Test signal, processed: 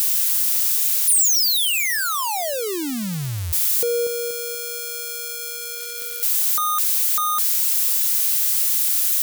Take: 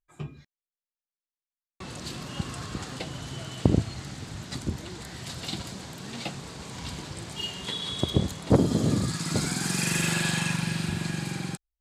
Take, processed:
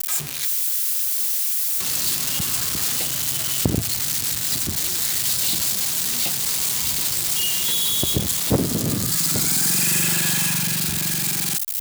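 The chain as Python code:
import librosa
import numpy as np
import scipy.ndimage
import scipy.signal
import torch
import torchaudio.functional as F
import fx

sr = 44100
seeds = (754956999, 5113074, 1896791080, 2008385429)

y = x + 0.5 * 10.0 ** (-13.0 / 20.0) * np.diff(np.sign(x), prepend=np.sign(x[:1]))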